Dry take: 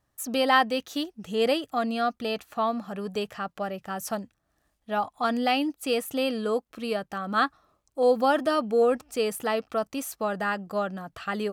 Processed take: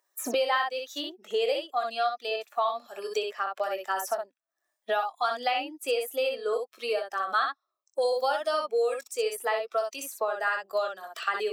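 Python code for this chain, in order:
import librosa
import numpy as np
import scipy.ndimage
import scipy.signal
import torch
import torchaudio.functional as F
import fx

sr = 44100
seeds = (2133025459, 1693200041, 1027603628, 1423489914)

y = fx.bin_expand(x, sr, power=1.5)
y = scipy.signal.sosfilt(scipy.signal.cheby2(4, 50, 170.0, 'highpass', fs=sr, output='sos'), y)
y = fx.room_early_taps(y, sr, ms=(21, 62), db=(-9.0, -5.0))
y = fx.band_squash(y, sr, depth_pct=100)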